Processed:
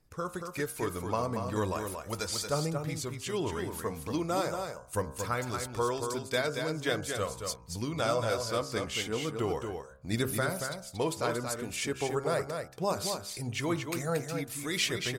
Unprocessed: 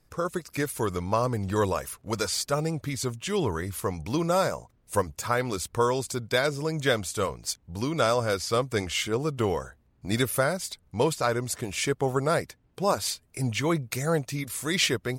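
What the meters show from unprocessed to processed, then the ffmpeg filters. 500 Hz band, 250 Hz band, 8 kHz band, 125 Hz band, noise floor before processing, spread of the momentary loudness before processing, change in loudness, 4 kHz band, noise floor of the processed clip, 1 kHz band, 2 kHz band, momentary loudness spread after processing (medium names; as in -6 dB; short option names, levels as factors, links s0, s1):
-5.0 dB, -5.0 dB, -4.5 dB, -6.0 dB, -65 dBFS, 7 LU, -5.0 dB, -4.5 dB, -49 dBFS, -5.0 dB, -5.0 dB, 6 LU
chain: -af "bandreject=f=66.38:t=h:w=4,bandreject=f=132.76:t=h:w=4,bandreject=f=199.14:t=h:w=4,bandreject=f=265.52:t=h:w=4,bandreject=f=331.9:t=h:w=4,bandreject=f=398.28:t=h:w=4,bandreject=f=464.66:t=h:w=4,bandreject=f=531.04:t=h:w=4,bandreject=f=597.42:t=h:w=4,bandreject=f=663.8:t=h:w=4,bandreject=f=730.18:t=h:w=4,bandreject=f=796.56:t=h:w=4,bandreject=f=862.94:t=h:w=4,bandreject=f=929.32:t=h:w=4,bandreject=f=995.7:t=h:w=4,bandreject=f=1062.08:t=h:w=4,bandreject=f=1128.46:t=h:w=4,bandreject=f=1194.84:t=h:w=4,bandreject=f=1261.22:t=h:w=4,bandreject=f=1327.6:t=h:w=4,bandreject=f=1393.98:t=h:w=4,bandreject=f=1460.36:t=h:w=4,bandreject=f=1526.74:t=h:w=4,bandreject=f=1593.12:t=h:w=4,bandreject=f=1659.5:t=h:w=4,aphaser=in_gain=1:out_gain=1:delay=4.6:decay=0.29:speed=0.39:type=triangular,aecho=1:1:230:0.501,volume=0.501"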